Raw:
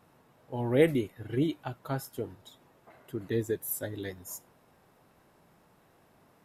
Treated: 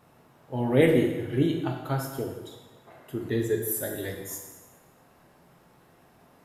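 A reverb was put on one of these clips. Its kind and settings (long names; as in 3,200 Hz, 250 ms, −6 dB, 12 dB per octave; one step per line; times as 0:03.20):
dense smooth reverb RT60 1.2 s, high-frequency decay 0.9×, DRR 1 dB
level +2.5 dB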